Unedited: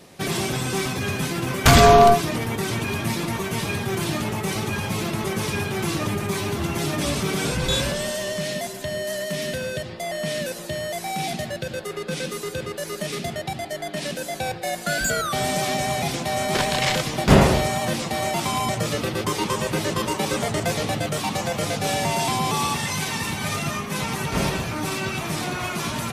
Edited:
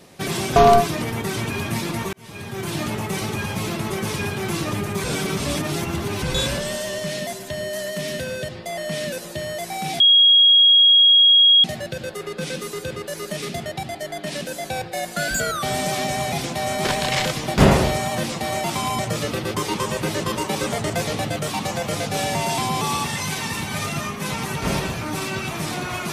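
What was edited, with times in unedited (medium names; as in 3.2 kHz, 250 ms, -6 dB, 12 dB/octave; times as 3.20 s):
0.56–1.90 s: delete
3.47–4.18 s: fade in
6.38–7.56 s: reverse
11.34 s: add tone 3.29 kHz -9.5 dBFS 1.64 s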